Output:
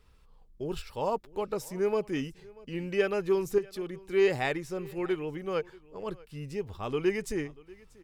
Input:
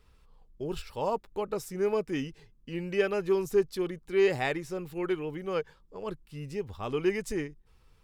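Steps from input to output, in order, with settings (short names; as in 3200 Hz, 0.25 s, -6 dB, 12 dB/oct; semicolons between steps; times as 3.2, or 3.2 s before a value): 3.58–4.12 compressor 2.5:1, threshold -34 dBFS, peak gain reduction 9.5 dB; on a send: echo 0.637 s -23 dB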